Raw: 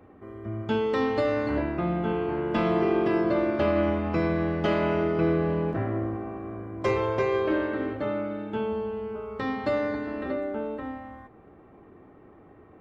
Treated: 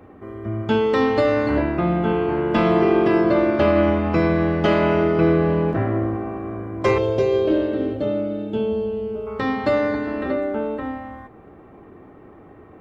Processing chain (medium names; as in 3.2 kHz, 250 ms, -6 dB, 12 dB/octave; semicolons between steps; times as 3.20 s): 6.98–9.27 s: high-order bell 1.4 kHz -12 dB; trim +7 dB